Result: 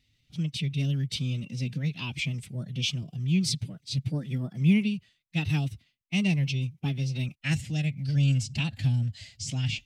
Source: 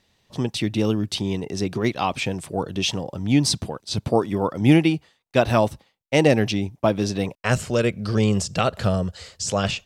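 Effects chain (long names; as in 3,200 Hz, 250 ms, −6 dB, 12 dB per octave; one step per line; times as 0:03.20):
drawn EQ curve 110 Hz 0 dB, 180 Hz −3 dB, 360 Hz −17 dB, 810 Hz −27 dB, 1,400 Hz −18 dB, 2,100 Hz −2 dB, 7,900 Hz −8 dB
phase-vocoder pitch shift with formants kept +4.5 semitones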